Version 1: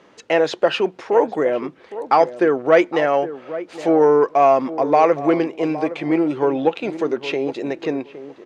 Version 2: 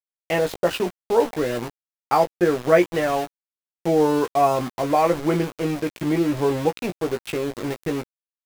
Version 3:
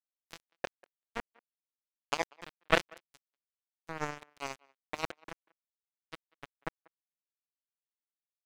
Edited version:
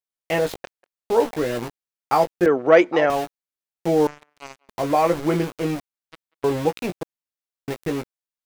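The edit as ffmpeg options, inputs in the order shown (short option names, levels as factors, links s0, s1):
-filter_complex "[2:a]asplit=4[s0][s1][s2][s3];[1:a]asplit=6[s4][s5][s6][s7][s8][s9];[s4]atrim=end=0.582[s10];[s0]atrim=start=0.578:end=1.022[s11];[s5]atrim=start=1.018:end=2.462[s12];[0:a]atrim=start=2.458:end=3.102[s13];[s6]atrim=start=3.098:end=4.072[s14];[s1]atrim=start=4.068:end=4.692[s15];[s7]atrim=start=4.688:end=5.802[s16];[s2]atrim=start=5.798:end=6.442[s17];[s8]atrim=start=6.438:end=7.032[s18];[s3]atrim=start=7.028:end=7.682[s19];[s9]atrim=start=7.678[s20];[s10][s11]acrossfade=d=0.004:c1=hsin:c2=hsin[s21];[s21][s12]acrossfade=d=0.004:c1=hsin:c2=hsin[s22];[s22][s13]acrossfade=d=0.004:c1=hsin:c2=hsin[s23];[s23][s14]acrossfade=d=0.004:c1=hsin:c2=hsin[s24];[s24][s15]acrossfade=d=0.004:c1=hsin:c2=hsin[s25];[s25][s16]acrossfade=d=0.004:c1=hsin:c2=hsin[s26];[s26][s17]acrossfade=d=0.004:c1=hsin:c2=hsin[s27];[s27][s18]acrossfade=d=0.004:c1=hsin:c2=hsin[s28];[s28][s19]acrossfade=d=0.004:c1=hsin:c2=hsin[s29];[s29][s20]acrossfade=d=0.004:c1=hsin:c2=hsin"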